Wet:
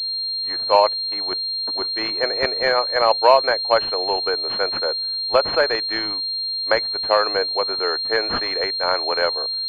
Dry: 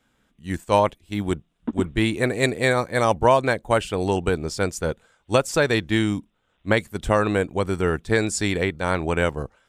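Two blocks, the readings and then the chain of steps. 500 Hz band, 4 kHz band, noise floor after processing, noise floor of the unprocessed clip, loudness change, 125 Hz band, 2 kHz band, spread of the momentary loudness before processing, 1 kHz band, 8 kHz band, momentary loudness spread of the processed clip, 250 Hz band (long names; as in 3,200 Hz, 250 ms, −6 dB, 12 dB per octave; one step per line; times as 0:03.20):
+1.5 dB, +15.5 dB, −25 dBFS, −69 dBFS, +3.5 dB, −20.0 dB, +1.0 dB, 9 LU, +4.0 dB, below −20 dB, 6 LU, −12.0 dB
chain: high-pass filter 500 Hz 24 dB per octave
switching amplifier with a slow clock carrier 4,200 Hz
level +4.5 dB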